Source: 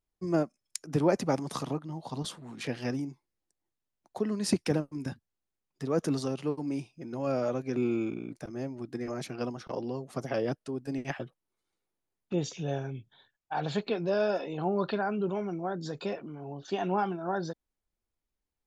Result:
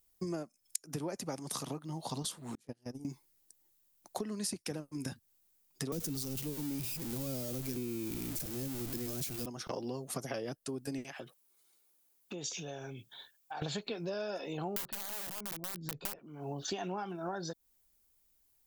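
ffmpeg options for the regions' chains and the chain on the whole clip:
ffmpeg -i in.wav -filter_complex "[0:a]asettb=1/sr,asplit=3[link_01][link_02][link_03];[link_01]atrim=end=2.554[link_04];[link_02]atrim=start=2.55:end=3.05,asetpts=PTS-STARTPTS,afade=type=in:duration=0.004:curve=qsin,afade=type=out:start_time=0.496:duration=0.004:curve=qsin,agate=range=-35dB:threshold=-30dB:ratio=16:release=100:detection=peak,acompressor=threshold=-43dB:ratio=2.5:attack=3.2:release=140:knee=1:detection=peak,equalizer=frequency=2500:width=0.57:gain=-14[link_05];[link_03]atrim=start=3.046[link_06];[link_04][link_05]acrossfade=duration=0.004:curve1=hsin:curve2=qsin[link_07];[link_07][link_06]acrossfade=duration=0.004:curve1=qsin:curve2=hsin,asettb=1/sr,asplit=3[link_08][link_09][link_10];[link_08]atrim=end=5.924[link_11];[link_09]atrim=start=5.92:end=9.46,asetpts=PTS-STARTPTS,afade=type=in:duration=0.004:curve=qsin,afade=type=out:start_time=3.536:duration=0.004:curve=qsin,aeval=exprs='val(0)+0.5*0.0224*sgn(val(0))':channel_layout=same,acrossover=split=420|3000[link_12][link_13][link_14];[link_13]acompressor=threshold=-45dB:ratio=4:attack=3.2:release=140:knee=2.83:detection=peak[link_15];[link_12][link_15][link_14]amix=inputs=3:normalize=0,lowshelf=frequency=130:gain=10[link_16];[link_10]atrim=start=9.456[link_17];[link_11][link_16]acrossfade=duration=0.004:curve1=hsin:curve2=qsin[link_18];[link_18][link_17]acrossfade=duration=0.004:curve1=qsin:curve2=hsin,asettb=1/sr,asplit=3[link_19][link_20][link_21];[link_19]atrim=end=11.044[link_22];[link_20]atrim=start=11.04:end=13.62,asetpts=PTS-STARTPTS,afade=type=in:duration=0.004:curve=qsin,afade=type=out:start_time=2.576:duration=0.004:curve=qsin,highpass=frequency=280:poles=1,bandreject=frequency=1900:width=26,acompressor=threshold=-47dB:ratio=4:attack=3.2:release=140:knee=1:detection=peak[link_23];[link_21]atrim=start=13.616[link_24];[link_22][link_23]acrossfade=duration=0.004:curve1=hsin:curve2=qsin[link_25];[link_25][link_24]acrossfade=duration=0.004:curve1=qsin:curve2=hsin,asettb=1/sr,asplit=3[link_26][link_27][link_28];[link_26]atrim=end=14.764[link_29];[link_27]atrim=start=14.76:end=16.19,asetpts=PTS-STARTPTS,afade=type=in:duration=0.004:curve=qsin,afade=type=out:start_time=1.426:duration=0.004:curve=qsin,aemphasis=mode=reproduction:type=riaa,aeval=exprs='(mod(13.3*val(0)+1,2)-1)/13.3':channel_layout=same[link_30];[link_28]atrim=start=16.186[link_31];[link_29][link_30]acrossfade=duration=0.004:curve1=hsin:curve2=qsin[link_32];[link_32][link_31]acrossfade=duration=0.004:curve1=qsin:curve2=hsin,aemphasis=mode=production:type=75fm,acompressor=threshold=-41dB:ratio=12,volume=6dB" out.wav

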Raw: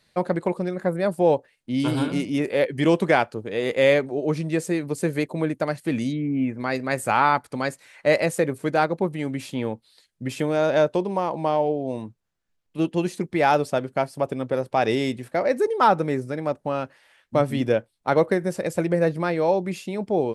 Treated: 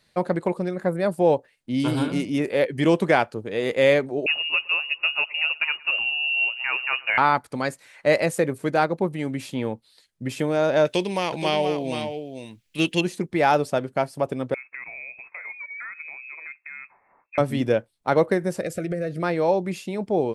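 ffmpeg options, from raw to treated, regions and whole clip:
ffmpeg -i in.wav -filter_complex "[0:a]asettb=1/sr,asplit=3[link_01][link_02][link_03];[link_01]atrim=end=4.264[link_04];[link_02]atrim=start=4.26:end=7.18,asetpts=PTS-STARTPTS,afade=type=in:duration=0.004:curve=qsin,afade=type=out:start_time=2.916:duration=0.004:curve=qsin,aecho=1:1:114|228|342|456:0.0708|0.0396|0.0222|0.0124,atrim=end_sample=128772,volume=15dB,asoftclip=hard,volume=-15dB,lowpass=frequency=2600:width_type=q:width=0.5098,lowpass=frequency=2600:width_type=q:width=0.6013,lowpass=frequency=2600:width_type=q:width=0.9,lowpass=frequency=2600:width_type=q:width=2.563,afreqshift=-3000[link_05];[link_03]atrim=start=7.176[link_06];[link_04][link_05]acrossfade=duration=0.004:curve1=hsin:curve2=qsin[link_07];[link_07][link_06]acrossfade=duration=0.004:curve1=qsin:curve2=hsin,asettb=1/sr,asplit=3[link_08][link_09][link_10];[link_08]atrim=end=10.854[link_11];[link_09]atrim=start=10.85:end=13.01,asetpts=PTS-STARTPTS,afade=type=in:duration=0.004:curve=qsin,afade=type=out:start_time=2.156:duration=0.004:curve=qsin,highshelf=frequency=1600:width_type=q:width=1.5:gain=12.5,aecho=1:1:474:0.398,atrim=end_sample=95256[link_12];[link_10]atrim=start=13.006[link_13];[link_11][link_12]acrossfade=duration=0.004:curve1=hsin:curve2=qsin[link_14];[link_14][link_13]acrossfade=duration=0.004:curve1=qsin:curve2=hsin,asettb=1/sr,asplit=3[link_15][link_16][link_17];[link_15]atrim=end=14.544[link_18];[link_16]atrim=start=14.54:end=17.38,asetpts=PTS-STARTPTS,afade=type=in:duration=0.004:curve=qsin,afade=type=out:start_time=2.836:duration=0.004:curve=qsin,acrossover=split=840[link_19][link_20];[link_19]aeval=exprs='val(0)*(1-0.5/2+0.5/2*cos(2*PI*4*n/s))':channel_layout=same[link_21];[link_20]aeval=exprs='val(0)*(1-0.5/2-0.5/2*cos(2*PI*4*n/s))':channel_layout=same[link_22];[link_21][link_22]amix=inputs=2:normalize=0,acompressor=threshold=-36dB:ratio=4:attack=3.2:release=140:knee=1:detection=peak,lowpass=frequency=2300:width_type=q:width=0.5098,lowpass=frequency=2300:width_type=q:width=0.6013,lowpass=frequency=2300:width_type=q:width=0.9,lowpass=frequency=2300:width_type=q:width=2.563,afreqshift=-2700[link_23];[link_17]atrim=start=17.376[link_24];[link_18][link_23]acrossfade=duration=0.004:curve1=hsin:curve2=qsin[link_25];[link_25][link_24]acrossfade=duration=0.004:curve1=qsin:curve2=hsin,asettb=1/sr,asplit=3[link_26][link_27][link_28];[link_26]atrim=end=18.614[link_29];[link_27]atrim=start=18.61:end=19.23,asetpts=PTS-STARTPTS,afade=type=in:duration=0.004:curve=qsin,afade=type=out:start_time=0.616:duration=0.004:curve=qsin,acompressor=threshold=-23dB:ratio=5:attack=3.2:release=140:knee=1:detection=peak,asuperstop=centerf=960:order=20:qfactor=2.4[link_30];[link_28]atrim=start=19.226[link_31];[link_29][link_30]acrossfade=duration=0.004:curve1=hsin:curve2=qsin[link_32];[link_32][link_31]acrossfade=duration=0.004:curve1=qsin:curve2=hsin" out.wav

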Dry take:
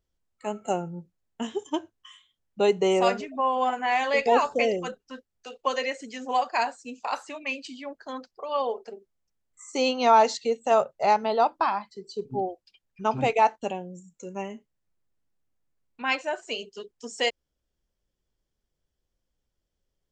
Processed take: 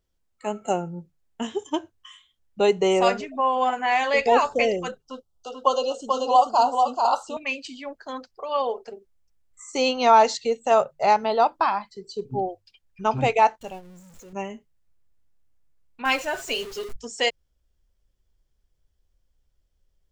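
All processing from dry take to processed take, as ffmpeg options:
ffmpeg -i in.wav -filter_complex "[0:a]asettb=1/sr,asplit=3[link_01][link_02][link_03];[link_01]atrim=end=5.024[link_04];[link_02]atrim=start=5.02:end=7.37,asetpts=PTS-STARTPTS,afade=type=in:duration=0.004:curve=qsin,afade=type=out:start_time=2.346:duration=0.004:curve=qsin,asuperstop=centerf=2000:order=12:qfactor=1.4,equalizer=frequency=740:width=1:gain=5.5,aecho=1:1:438:0.631,atrim=end_sample=103635[link_05];[link_03]atrim=start=7.366[link_06];[link_04][link_05]acrossfade=duration=0.004:curve1=hsin:curve2=qsin[link_07];[link_07][link_06]acrossfade=duration=0.004:curve1=qsin:curve2=hsin,asettb=1/sr,asplit=3[link_08][link_09][link_10];[link_08]atrim=end=13.614[link_11];[link_09]atrim=start=13.61:end=14.33,asetpts=PTS-STARTPTS,afade=type=in:duration=0.004:curve=qsin,afade=type=out:start_time=0.716:duration=0.004:curve=qsin,aeval=exprs='val(0)+0.5*0.0119*sgn(val(0))':channel_layout=same,agate=range=-10dB:threshold=-32dB:ratio=16:release=100:detection=peak,acompressor=threshold=-48dB:ratio=1.5:attack=3.2:release=140:knee=1:detection=peak[link_12];[link_10]atrim=start=14.326[link_13];[link_11][link_12]acrossfade=duration=0.004:curve1=hsin:curve2=qsin[link_14];[link_14][link_13]acrossfade=duration=0.004:curve1=qsin:curve2=hsin,asettb=1/sr,asplit=3[link_15][link_16][link_17];[link_15]atrim=end=16.054[link_18];[link_16]atrim=start=16.05:end=16.96,asetpts=PTS-STARTPTS,afade=type=in:duration=0.004:curve=qsin,afade=type=out:start_time=0.906:duration=0.004:curve=qsin,aeval=exprs='val(0)+0.5*0.0119*sgn(val(0))':channel_layout=same,aecho=1:1:7.4:0.45,atrim=end_sample=40131[link_19];[link_17]atrim=start=16.956[link_20];[link_18][link_19]acrossfade=duration=0.004:curve1=hsin:curve2=qsin[link_21];[link_21][link_20]acrossfade=duration=0.004:curve1=qsin:curve2=hsin,bandreject=frequency=50:width_type=h:width=6,bandreject=frequency=100:width_type=h:width=6,bandreject=frequency=150:width_type=h:width=6,asubboost=boost=3:cutoff=110,volume=3dB" out.wav

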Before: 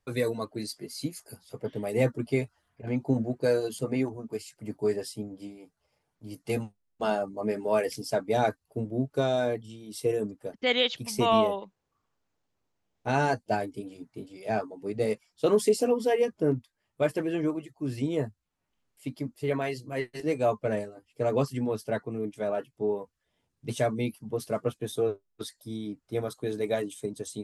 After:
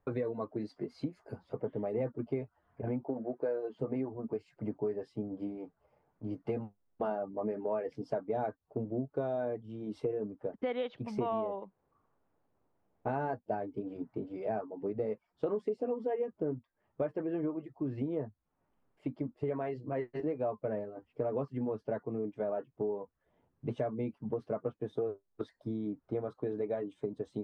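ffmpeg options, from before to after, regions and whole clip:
ffmpeg -i in.wav -filter_complex "[0:a]asettb=1/sr,asplit=3[link_01][link_02][link_03];[link_01]atrim=end=3.044[link_04];[link_02]atrim=start=3.04:end=3.79,asetpts=PTS-STARTPTS,afade=type=in:duration=0.004:curve=qsin,afade=type=out:start_time=0.746:duration=0.004:curve=qsin,highpass=150,lowpass=7000,bass=frequency=250:gain=-11,treble=frequency=4000:gain=-11[link_05];[link_03]atrim=start=3.786[link_06];[link_04][link_05]acrossfade=duration=0.004:curve1=hsin:curve2=qsin[link_07];[link_07][link_06]acrossfade=duration=0.004:curve1=qsin:curve2=hsin,lowpass=1100,lowshelf=frequency=190:gain=-6,acompressor=threshold=-42dB:ratio=4,volume=8dB" out.wav

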